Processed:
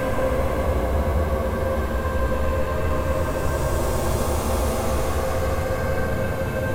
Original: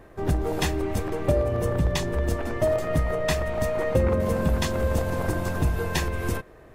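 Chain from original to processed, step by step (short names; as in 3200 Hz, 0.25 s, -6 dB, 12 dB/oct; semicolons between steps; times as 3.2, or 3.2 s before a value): flange 1.2 Hz, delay 6 ms, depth 3.3 ms, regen +74%; sine folder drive 14 dB, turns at -11 dBFS; Paulstretch 27×, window 0.10 s, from 4.81; gain -7.5 dB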